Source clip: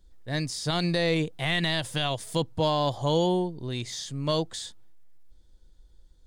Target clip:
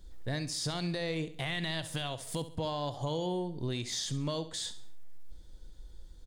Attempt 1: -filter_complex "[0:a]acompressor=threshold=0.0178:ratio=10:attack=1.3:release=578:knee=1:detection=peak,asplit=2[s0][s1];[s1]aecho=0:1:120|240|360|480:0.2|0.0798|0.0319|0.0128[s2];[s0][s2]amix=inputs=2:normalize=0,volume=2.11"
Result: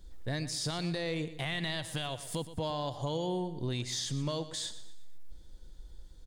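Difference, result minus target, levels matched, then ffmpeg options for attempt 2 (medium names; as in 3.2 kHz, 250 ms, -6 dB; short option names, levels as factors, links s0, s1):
echo 52 ms late
-filter_complex "[0:a]acompressor=threshold=0.0178:ratio=10:attack=1.3:release=578:knee=1:detection=peak,asplit=2[s0][s1];[s1]aecho=0:1:68|136|204|272:0.2|0.0798|0.0319|0.0128[s2];[s0][s2]amix=inputs=2:normalize=0,volume=2.11"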